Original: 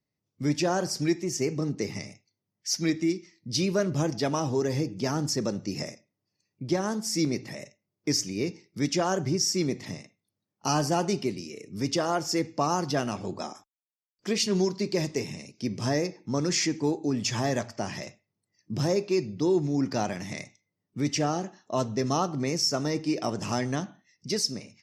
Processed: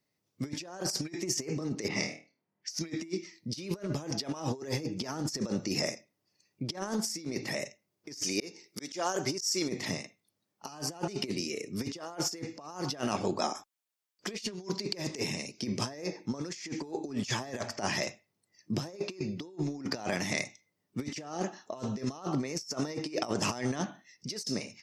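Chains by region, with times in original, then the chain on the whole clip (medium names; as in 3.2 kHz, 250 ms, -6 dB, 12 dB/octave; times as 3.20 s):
1.88–2.79 s: flutter echo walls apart 4.4 m, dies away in 0.31 s + level-controlled noise filter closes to 1.8 kHz, open at -26.5 dBFS + high-pass 130 Hz
8.23–9.69 s: tone controls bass -9 dB, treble +6 dB + slow attack 360 ms
whole clip: bass shelf 190 Hz -11.5 dB; compressor with a negative ratio -35 dBFS, ratio -0.5; trim +1.5 dB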